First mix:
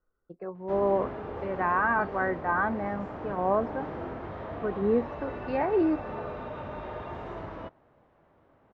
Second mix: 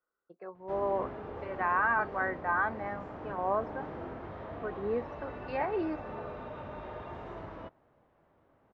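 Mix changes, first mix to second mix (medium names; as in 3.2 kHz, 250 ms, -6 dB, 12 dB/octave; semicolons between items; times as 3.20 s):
speech: add high-pass 890 Hz 6 dB/octave; background -4.5 dB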